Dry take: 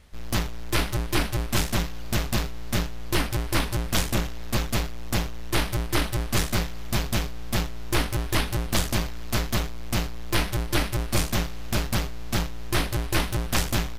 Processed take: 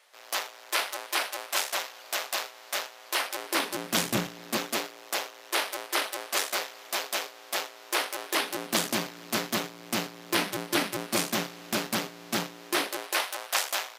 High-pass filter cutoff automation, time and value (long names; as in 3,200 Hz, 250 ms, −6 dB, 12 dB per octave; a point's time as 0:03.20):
high-pass filter 24 dB per octave
0:03.23 540 Hz
0:04.17 140 Hz
0:05.14 450 Hz
0:08.18 450 Hz
0:08.81 200 Hz
0:12.51 200 Hz
0:13.26 570 Hz